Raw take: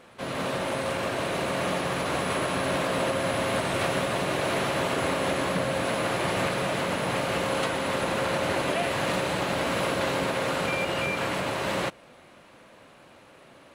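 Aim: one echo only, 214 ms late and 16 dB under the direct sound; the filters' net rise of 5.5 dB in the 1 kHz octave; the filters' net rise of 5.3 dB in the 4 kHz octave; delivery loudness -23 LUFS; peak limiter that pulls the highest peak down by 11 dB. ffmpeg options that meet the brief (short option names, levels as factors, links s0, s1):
-af "equalizer=f=1000:t=o:g=6.5,equalizer=f=4000:t=o:g=6.5,alimiter=limit=0.075:level=0:latency=1,aecho=1:1:214:0.158,volume=2.37"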